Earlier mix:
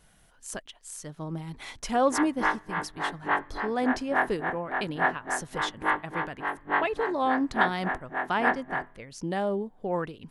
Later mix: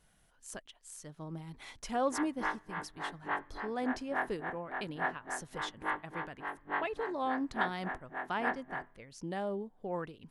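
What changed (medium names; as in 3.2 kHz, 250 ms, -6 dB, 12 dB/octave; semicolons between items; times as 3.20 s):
speech -8.0 dB; background -9.0 dB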